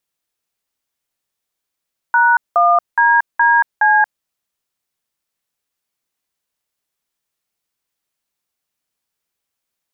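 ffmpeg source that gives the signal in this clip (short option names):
-f lavfi -i "aevalsrc='0.266*clip(min(mod(t,0.418),0.23-mod(t,0.418))/0.002,0,1)*(eq(floor(t/0.418),0)*(sin(2*PI*941*mod(t,0.418))+sin(2*PI*1477*mod(t,0.418)))+eq(floor(t/0.418),1)*(sin(2*PI*697*mod(t,0.418))+sin(2*PI*1209*mod(t,0.418)))+eq(floor(t/0.418),2)*(sin(2*PI*941*mod(t,0.418))+sin(2*PI*1633*mod(t,0.418)))+eq(floor(t/0.418),3)*(sin(2*PI*941*mod(t,0.418))+sin(2*PI*1633*mod(t,0.418)))+eq(floor(t/0.418),4)*(sin(2*PI*852*mod(t,0.418))+sin(2*PI*1633*mod(t,0.418))))':d=2.09:s=44100"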